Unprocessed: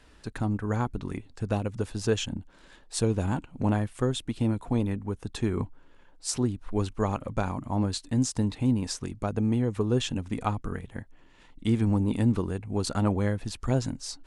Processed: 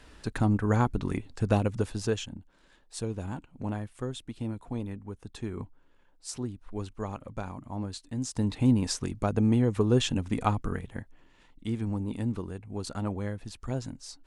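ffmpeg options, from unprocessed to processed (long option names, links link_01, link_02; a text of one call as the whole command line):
ffmpeg -i in.wav -af "volume=13.5dB,afade=type=out:start_time=1.63:duration=0.66:silence=0.266073,afade=type=in:start_time=8.21:duration=0.41:silence=0.316228,afade=type=out:start_time=10.6:duration=1.06:silence=0.354813" out.wav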